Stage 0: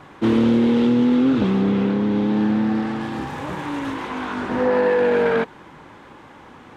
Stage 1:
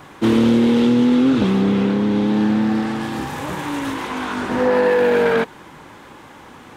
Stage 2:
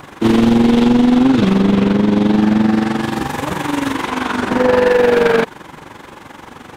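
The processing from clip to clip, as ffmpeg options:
ffmpeg -i in.wav -af "aemphasis=mode=production:type=50kf,volume=2dB" out.wav
ffmpeg -i in.wav -af "tremolo=f=23:d=0.71,volume=16dB,asoftclip=hard,volume=-16dB,volume=8.5dB" out.wav

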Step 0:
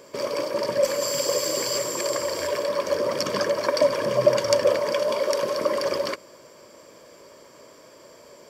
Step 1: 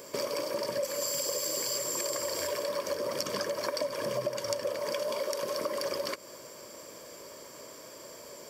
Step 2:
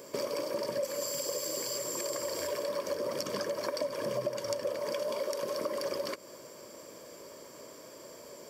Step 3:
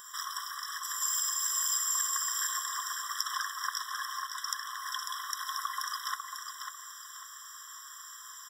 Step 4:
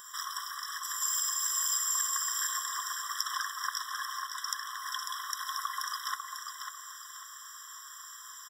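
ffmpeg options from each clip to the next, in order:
ffmpeg -i in.wav -af "highshelf=frequency=7000:gain=12,acompressor=threshold=-30dB:ratio=6" out.wav
ffmpeg -i in.wav -af "equalizer=frequency=280:width=0.43:gain=4.5,volume=-4dB" out.wav
ffmpeg -i in.wav -af "aecho=1:1:546|1092|1638|2184:0.473|0.156|0.0515|0.017,afftfilt=real='re*eq(mod(floor(b*sr/1024/1000),2),1)':imag='im*eq(mod(floor(b*sr/1024/1000),2),1)':win_size=1024:overlap=0.75,volume=8dB" out.wav
ffmpeg -i in.wav -filter_complex "[0:a]asplit=2[link_01][link_02];[link_02]adelay=816.3,volume=-15dB,highshelf=frequency=4000:gain=-18.4[link_03];[link_01][link_03]amix=inputs=2:normalize=0" out.wav

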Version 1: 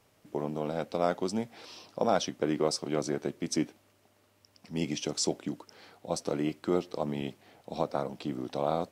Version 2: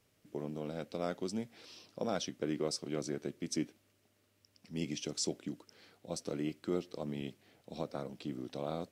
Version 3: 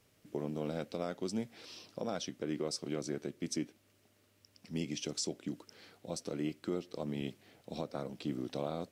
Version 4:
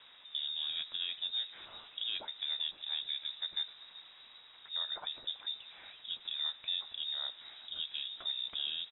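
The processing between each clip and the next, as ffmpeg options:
ffmpeg -i in.wav -af "equalizer=frequency=870:width=1.2:gain=-8.5,volume=-5dB" out.wav
ffmpeg -i in.wav -af "alimiter=level_in=4.5dB:limit=-24dB:level=0:latency=1:release=363,volume=-4.5dB,volume=3.5dB" out.wav
ffmpeg -i in.wav -filter_complex "[0:a]aeval=exprs='val(0)+0.5*0.00299*sgn(val(0))':channel_layout=same,asplit=5[link_01][link_02][link_03][link_04][link_05];[link_02]adelay=382,afreqshift=-110,volume=-17dB[link_06];[link_03]adelay=764,afreqshift=-220,volume=-23.2dB[link_07];[link_04]adelay=1146,afreqshift=-330,volume=-29.4dB[link_08];[link_05]adelay=1528,afreqshift=-440,volume=-35.6dB[link_09];[link_01][link_06][link_07][link_08][link_09]amix=inputs=5:normalize=0,lowpass=frequency=3300:width_type=q:width=0.5098,lowpass=frequency=3300:width_type=q:width=0.6013,lowpass=frequency=3300:width_type=q:width=0.9,lowpass=frequency=3300:width_type=q:width=2.563,afreqshift=-3900,volume=-1dB" out.wav

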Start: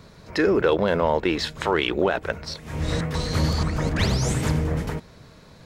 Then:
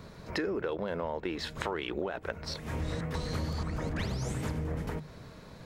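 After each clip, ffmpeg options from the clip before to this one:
ffmpeg -i in.wav -af "equalizer=frequency=5700:width=0.48:gain=-4,bandreject=frequency=50:width_type=h:width=6,bandreject=frequency=100:width_type=h:width=6,bandreject=frequency=150:width_type=h:width=6,acompressor=threshold=-31dB:ratio=6" out.wav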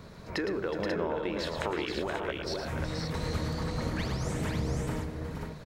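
ffmpeg -i in.wav -af "aecho=1:1:112|368|477|538:0.398|0.2|0.501|0.531" out.wav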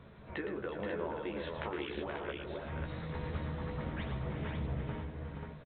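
ffmpeg -i in.wav -filter_complex "[0:a]asplit=2[link_01][link_02];[link_02]adelay=14,volume=-5dB[link_03];[link_01][link_03]amix=inputs=2:normalize=0,volume=-7.5dB" -ar 8000 -c:a pcm_mulaw out.wav

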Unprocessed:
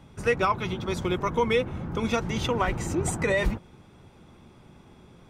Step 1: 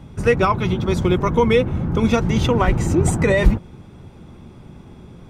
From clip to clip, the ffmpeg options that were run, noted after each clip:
ffmpeg -i in.wav -af "lowshelf=frequency=400:gain=8.5,volume=4.5dB" out.wav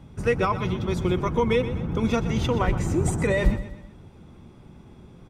ffmpeg -i in.wav -af "aecho=1:1:124|248|372|496:0.224|0.0985|0.0433|0.0191,volume=-6.5dB" out.wav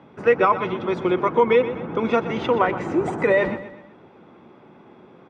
ffmpeg -i in.wav -af "highpass=350,lowpass=2200,volume=7.5dB" out.wav

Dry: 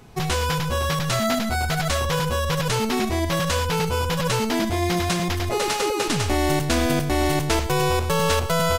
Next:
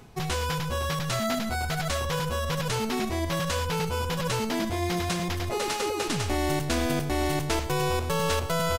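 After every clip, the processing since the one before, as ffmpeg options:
ffmpeg -i in.wav -filter_complex "[0:a]areverse,acompressor=mode=upward:threshold=-23dB:ratio=2.5,areverse,asplit=2[link_01][link_02];[link_02]adelay=1166,volume=-19dB,highshelf=frequency=4000:gain=-26.2[link_03];[link_01][link_03]amix=inputs=2:normalize=0,volume=-5.5dB" out.wav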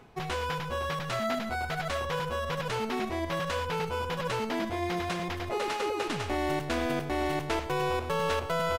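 ffmpeg -i in.wav -af "bass=frequency=250:gain=-7,treble=frequency=4000:gain=-11,volume=-1dB" out.wav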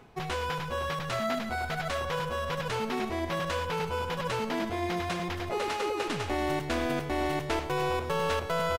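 ffmpeg -i in.wav -af "asoftclip=type=hard:threshold=-20dB,aecho=1:1:278:0.168" out.wav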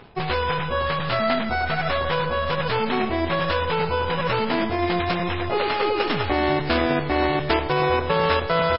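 ffmpeg -i in.wav -filter_complex "[0:a]asplit=2[link_01][link_02];[link_02]acrusher=bits=5:dc=4:mix=0:aa=0.000001,volume=-4.5dB[link_03];[link_01][link_03]amix=inputs=2:normalize=0,volume=6dB" -ar 12000 -c:a libmp3lame -b:a 16k out.mp3

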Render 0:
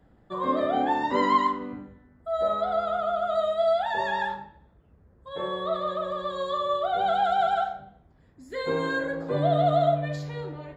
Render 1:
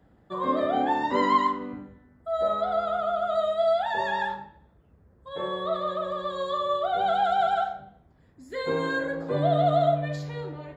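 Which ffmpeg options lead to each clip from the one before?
ffmpeg -i in.wav -af "highpass=47" out.wav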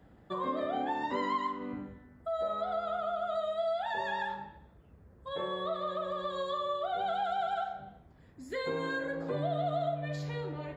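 ffmpeg -i in.wav -af "equalizer=frequency=2600:width_type=o:width=0.77:gain=2.5,acompressor=threshold=-36dB:ratio=2.5,volume=1dB" out.wav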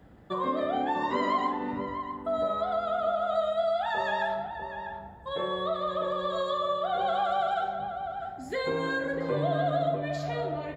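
ffmpeg -i in.wav -filter_complex "[0:a]asplit=2[link_01][link_02];[link_02]adelay=646,lowpass=frequency=1400:poles=1,volume=-6dB,asplit=2[link_03][link_04];[link_04]adelay=646,lowpass=frequency=1400:poles=1,volume=0.18,asplit=2[link_05][link_06];[link_06]adelay=646,lowpass=frequency=1400:poles=1,volume=0.18[link_07];[link_01][link_03][link_05][link_07]amix=inputs=4:normalize=0,volume=4.5dB" out.wav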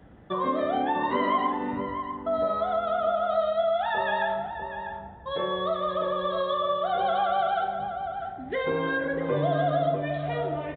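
ffmpeg -i in.wav -af "aresample=8000,aresample=44100,volume=2.5dB" out.wav

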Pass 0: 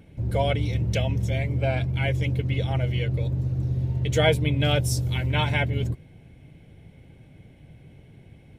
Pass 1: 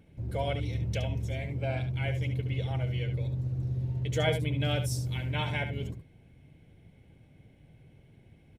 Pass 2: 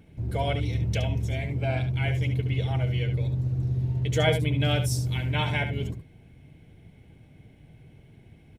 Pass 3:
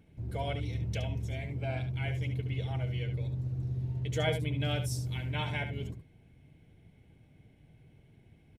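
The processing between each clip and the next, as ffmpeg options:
ffmpeg -i in.wav -af "aecho=1:1:71:0.355,volume=-8dB" out.wav
ffmpeg -i in.wav -af "bandreject=frequency=540:width=12,volume=5dB" out.wav
ffmpeg -i in.wav -af "aresample=32000,aresample=44100,volume=-7.5dB" out.wav

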